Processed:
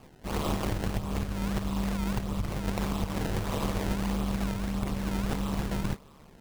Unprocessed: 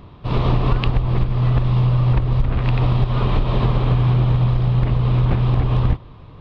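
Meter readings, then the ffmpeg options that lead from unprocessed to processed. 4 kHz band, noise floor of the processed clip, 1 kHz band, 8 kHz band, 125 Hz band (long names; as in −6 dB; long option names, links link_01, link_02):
−6.0 dB, −54 dBFS, −8.5 dB, can't be measured, −18.0 dB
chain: -af "aeval=exprs='val(0)*sin(2*PI*73*n/s)':channel_layout=same,bass=frequency=250:gain=-8,treble=frequency=4000:gain=9,acrusher=samples=22:mix=1:aa=0.000001:lfo=1:lforange=35.2:lforate=1.6,volume=-4.5dB"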